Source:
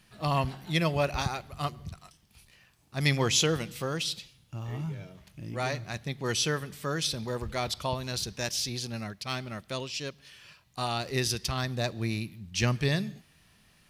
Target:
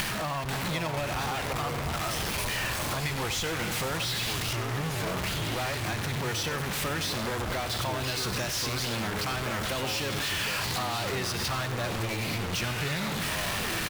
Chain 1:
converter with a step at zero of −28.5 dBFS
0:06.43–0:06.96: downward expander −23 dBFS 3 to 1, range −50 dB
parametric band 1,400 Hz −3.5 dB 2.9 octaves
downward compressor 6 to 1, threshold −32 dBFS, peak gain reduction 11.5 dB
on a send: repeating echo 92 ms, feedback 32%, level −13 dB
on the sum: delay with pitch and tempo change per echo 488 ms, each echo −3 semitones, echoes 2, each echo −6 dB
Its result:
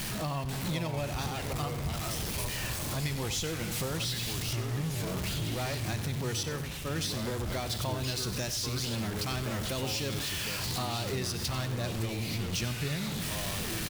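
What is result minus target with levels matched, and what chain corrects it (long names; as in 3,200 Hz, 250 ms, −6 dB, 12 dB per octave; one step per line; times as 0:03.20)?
converter with a step at zero: distortion −6 dB; 1,000 Hz band −4.0 dB
converter with a step at zero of −17 dBFS
0:06.43–0:06.96: downward expander −23 dBFS 3 to 1, range −50 dB
parametric band 1,400 Hz +6 dB 2.9 octaves
downward compressor 6 to 1, threshold −32 dBFS, peak gain reduction 17.5 dB
on a send: repeating echo 92 ms, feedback 32%, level −13 dB
on the sum: delay with pitch and tempo change per echo 488 ms, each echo −3 semitones, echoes 2, each echo −6 dB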